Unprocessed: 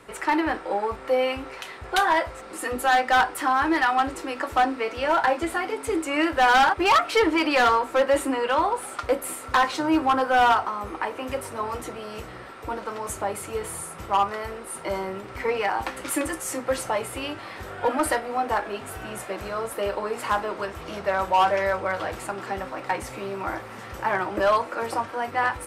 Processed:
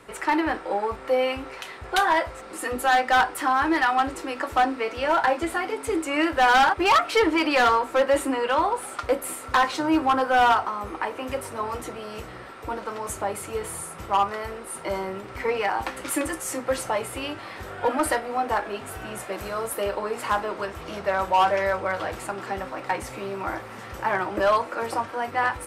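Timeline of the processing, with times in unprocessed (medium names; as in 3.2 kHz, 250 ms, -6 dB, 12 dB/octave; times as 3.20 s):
19.32–19.84 s: treble shelf 9.3 kHz +11 dB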